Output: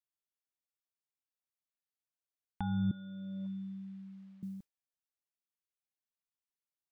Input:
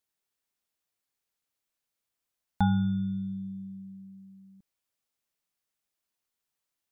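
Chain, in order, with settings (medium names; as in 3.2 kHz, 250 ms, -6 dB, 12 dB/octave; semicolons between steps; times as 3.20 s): expander -49 dBFS; compressor with a negative ratio -37 dBFS, ratio -1; 2.91–4.43 s: band-pass 570–2700 Hz; trim +11.5 dB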